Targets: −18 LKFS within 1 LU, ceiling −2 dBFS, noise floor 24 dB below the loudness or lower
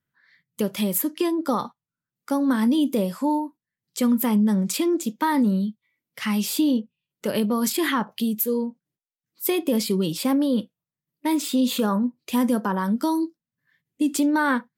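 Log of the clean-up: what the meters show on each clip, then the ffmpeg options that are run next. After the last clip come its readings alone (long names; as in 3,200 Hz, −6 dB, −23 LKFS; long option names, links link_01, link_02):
integrated loudness −23.5 LKFS; sample peak −8.0 dBFS; target loudness −18.0 LKFS
→ -af "volume=5.5dB"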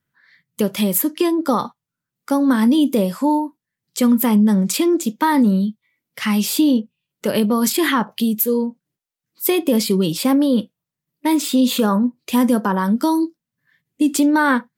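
integrated loudness −18.0 LKFS; sample peak −2.5 dBFS; background noise floor −86 dBFS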